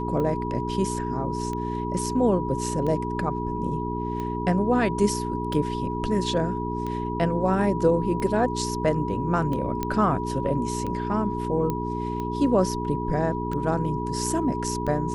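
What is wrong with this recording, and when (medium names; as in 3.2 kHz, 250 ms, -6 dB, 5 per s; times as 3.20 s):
hum 60 Hz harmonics 7 -30 dBFS
tick 45 rpm -20 dBFS
whine 970 Hz -31 dBFS
9.83 s: pop -13 dBFS
11.70 s: pop -15 dBFS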